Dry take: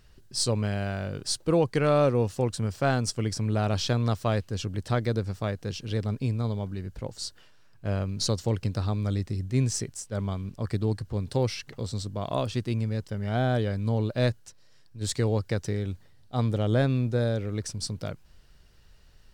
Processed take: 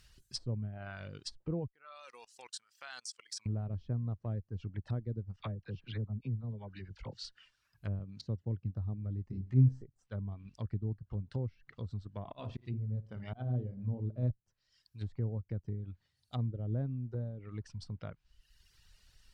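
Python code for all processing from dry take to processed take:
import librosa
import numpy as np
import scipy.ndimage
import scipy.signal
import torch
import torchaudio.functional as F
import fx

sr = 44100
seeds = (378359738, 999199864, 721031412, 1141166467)

y = fx.chain(x, sr, fx.highpass(hz=970.0, slope=12),
    fx.level_steps(step_db=21), at=(1.67, 3.46))
y = fx.chain(y, sr, fx.lowpass(hz=5000.0, slope=12),
    fx.dispersion(late='lows', ms=41.0, hz=930.0), at=(5.36, 7.25))
y = fx.chain(y, sr, fx.highpass(hz=67.0, slope=12),
    fx.high_shelf(hz=2300.0, db=6.5),
    fx.resample_linear(factor=2), at=(7.99, 8.76))
y = fx.chain(y, sr, fx.doubler(ms=15.0, db=-4),
    fx.room_flutter(wall_m=5.3, rt60_s=0.39), at=(9.29, 9.83))
y = fx.chain(y, sr, fx.peak_eq(hz=1600.0, db=-5.5, octaves=0.57),
    fx.room_flutter(wall_m=9.6, rt60_s=0.46),
    fx.auto_swell(attack_ms=169.0), at=(12.19, 14.31))
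y = fx.dereverb_blind(y, sr, rt60_s=1.0)
y = fx.env_lowpass_down(y, sr, base_hz=390.0, full_db=-27.0)
y = fx.tone_stack(y, sr, knobs='5-5-5')
y = F.gain(torch.from_numpy(y), 8.5).numpy()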